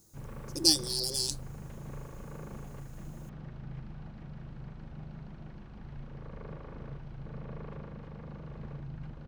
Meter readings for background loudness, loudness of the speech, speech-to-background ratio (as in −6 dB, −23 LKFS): −45.5 LKFS, −27.0 LKFS, 18.5 dB